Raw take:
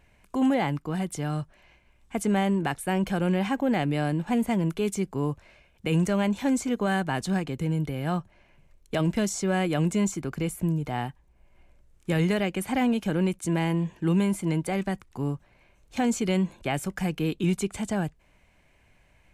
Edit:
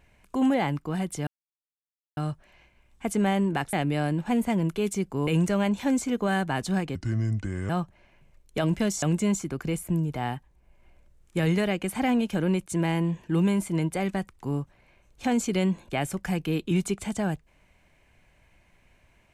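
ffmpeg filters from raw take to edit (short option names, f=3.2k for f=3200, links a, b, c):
-filter_complex "[0:a]asplit=7[a][b][c][d][e][f][g];[a]atrim=end=1.27,asetpts=PTS-STARTPTS,afade=t=out:st=1.266:d=0.004:c=hsin,apad=pad_dur=0.9[h];[b]atrim=start=1.27:end=2.832,asetpts=PTS-STARTPTS,afade=t=in:d=0.004:c=hsin[i];[c]atrim=start=3.738:end=5.282[j];[d]atrim=start=5.858:end=7.544[k];[e]atrim=start=7.54:end=8.06,asetpts=PTS-STARTPTS,asetrate=30870,aresample=44100,atrim=end_sample=32760,asetpts=PTS-STARTPTS[l];[f]atrim=start=8.056:end=9.392[m];[g]atrim=start=9.748[n];[h][i]concat=n=2:v=0:a=1[o];[o][j]acrossfade=d=0.004:c1=hsin:c2=hsin[p];[p][k]acrossfade=d=0.004:c1=hsin:c2=hsin[q];[q][l]acrossfade=d=0.004:c1=hsin:c2=hsin[r];[r][m]acrossfade=d=0.004:c1=hsin:c2=hsin[s];[s][n]acrossfade=d=0.004:c1=hsin:c2=hsin"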